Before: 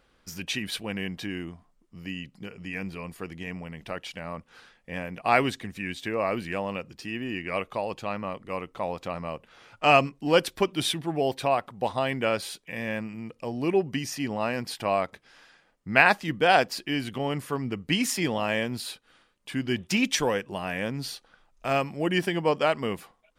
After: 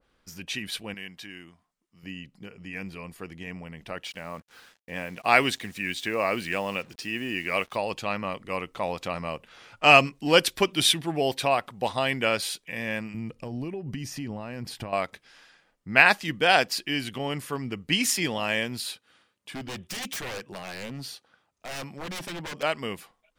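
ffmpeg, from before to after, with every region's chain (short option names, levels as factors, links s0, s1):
-filter_complex "[0:a]asettb=1/sr,asplit=3[s0][s1][s2];[s0]atrim=end=0.944[s3];[s1]atrim=start=0.94:end=2.03,asetpts=PTS-STARTPTS,afade=t=in:d=0.004:c=qsin,afade=t=out:st=1.086:d=0.004:c=qsin,highpass=f=310:p=1,equalizer=f=450:w=0.5:g=-7[s4];[s2]atrim=start=2.026[s5];[s3][s4]acrossfade=d=0.004:c1=hsin:c2=qsin[s6];[s6][s5]acrossfade=d=0.004:c1=qsin:c2=hsin,asettb=1/sr,asplit=3[s7][s8][s9];[s7]atrim=end=4.044[s10];[s8]atrim=start=4.04:end=7.76,asetpts=PTS-STARTPTS,afade=t=in:d=0.004:c=qsin,afade=t=out:st=3.716:d=0.004:c=qsin,lowshelf=f=120:g=-6.5,acrusher=bits=8:mix=0:aa=0.5[s11];[s9]atrim=start=7.756[s12];[s10][s11]acrossfade=d=0.004:c1=hsin:c2=qsin[s13];[s13][s12]acrossfade=d=0.004:c1=qsin:c2=hsin,asettb=1/sr,asplit=3[s14][s15][s16];[s14]atrim=end=13.144[s17];[s15]atrim=start=13.14:end=14.93,asetpts=PTS-STARTPTS,afade=t=in:d=0.004:c=qsin,afade=t=out:st=1.786:d=0.004:c=qsin,acompressor=threshold=0.0224:ratio=8:attack=3.2:release=140:knee=1:detection=peak,lowshelf=f=210:g=12[s18];[s16]atrim=start=14.926[s19];[s17][s18]acrossfade=d=0.004:c1=hsin:c2=qsin[s20];[s20][s19]acrossfade=d=0.004:c1=qsin:c2=hsin,asettb=1/sr,asplit=3[s21][s22][s23];[s21]atrim=end=18.914[s24];[s22]atrim=start=18.91:end=22.63,asetpts=PTS-STARTPTS,afade=t=in:d=0.004:c=qsin,afade=t=out:st=3.716:d=0.004:c=qsin,highpass=f=62:w=0.5412,highpass=f=62:w=1.3066,aeval=exprs='0.0447*(abs(mod(val(0)/0.0447+3,4)-2)-1)':c=same[s25];[s23]atrim=start=22.626[s26];[s24][s25]acrossfade=d=0.004:c1=hsin:c2=qsin[s27];[s27][s26]acrossfade=d=0.004:c1=qsin:c2=hsin,dynaudnorm=f=280:g=31:m=3.76,adynamicequalizer=threshold=0.0178:dfrequency=1600:dqfactor=0.7:tfrequency=1600:tqfactor=0.7:attack=5:release=100:ratio=0.375:range=3.5:mode=boostabove:tftype=highshelf,volume=0.631"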